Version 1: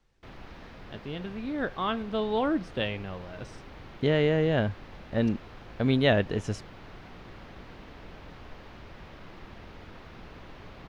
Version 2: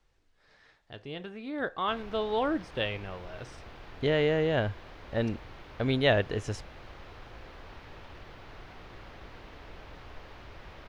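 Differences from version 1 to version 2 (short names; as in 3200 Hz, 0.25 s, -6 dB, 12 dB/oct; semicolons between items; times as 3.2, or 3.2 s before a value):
background: entry +1.65 s; master: add bell 200 Hz -7.5 dB 1.1 oct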